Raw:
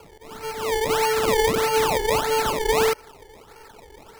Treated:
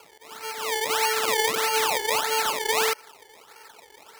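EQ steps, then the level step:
high-pass filter 1,300 Hz 6 dB per octave
+2.5 dB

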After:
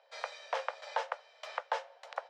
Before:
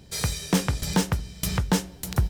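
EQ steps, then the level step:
Butterworth high-pass 530 Hz 72 dB per octave
low-pass filter 1,000 Hz 6 dB per octave
high-frequency loss of the air 150 metres
+1.0 dB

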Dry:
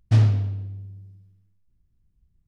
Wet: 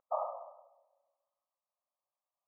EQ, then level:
linear-phase brick-wall band-pass 520–1,300 Hz
+5.5 dB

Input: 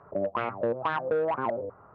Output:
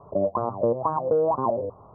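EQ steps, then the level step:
Chebyshev low-pass filter 1,100 Hz, order 5
low-shelf EQ 110 Hz +5 dB
+5.5 dB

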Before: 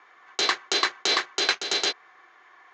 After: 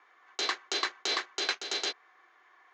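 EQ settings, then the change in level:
high-pass filter 210 Hz 24 dB per octave
−7.5 dB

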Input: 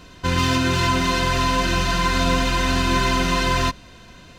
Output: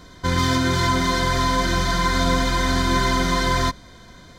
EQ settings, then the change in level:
Butterworth band-reject 2,700 Hz, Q 3.9
0.0 dB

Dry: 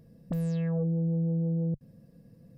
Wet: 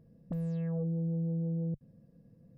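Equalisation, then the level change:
high-shelf EQ 2,100 Hz −11 dB
−4.5 dB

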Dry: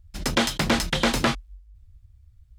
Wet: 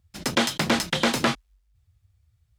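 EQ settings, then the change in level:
high-pass filter 130 Hz 12 dB per octave
0.0 dB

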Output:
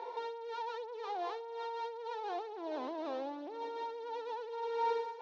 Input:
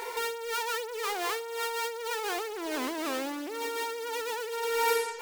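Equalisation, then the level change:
high-frequency loss of the air 290 metres
loudspeaker in its box 430–5,600 Hz, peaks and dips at 430 Hz −5 dB, 2,100 Hz −4 dB, 4,800 Hz −8 dB
flat-topped bell 1,900 Hz −12.5 dB
0.0 dB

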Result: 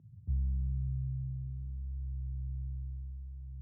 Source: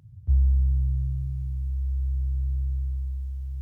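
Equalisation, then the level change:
resonant band-pass 200 Hz, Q 1.5
0.0 dB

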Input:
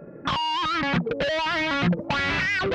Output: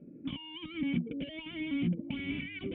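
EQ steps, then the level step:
formant resonators in series i
0.0 dB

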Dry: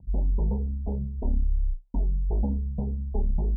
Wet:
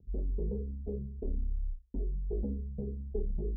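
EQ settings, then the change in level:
transistor ladder low-pass 480 Hz, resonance 60%
mains-hum notches 60/120/180/240 Hz
+1.5 dB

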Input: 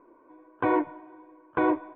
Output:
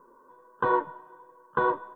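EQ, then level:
bass and treble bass +11 dB, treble +8 dB
low-shelf EQ 400 Hz −11.5 dB
phaser with its sweep stopped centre 460 Hz, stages 8
+6.0 dB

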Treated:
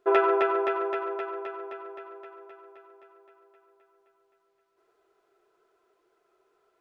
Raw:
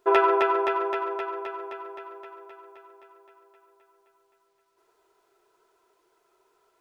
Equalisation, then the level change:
low-shelf EQ 130 Hz −4.5 dB
high-shelf EQ 3,600 Hz −11.5 dB
notch filter 940 Hz, Q 5.3
0.0 dB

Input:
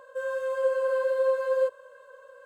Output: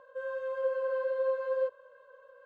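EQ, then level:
high-frequency loss of the air 180 metres
−5.0 dB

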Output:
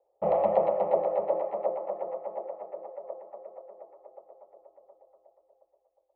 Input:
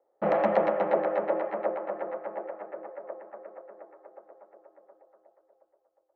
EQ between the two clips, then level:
high-frequency loss of the air 420 metres
low-shelf EQ 93 Hz +8.5 dB
phaser with its sweep stopped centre 650 Hz, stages 4
+2.0 dB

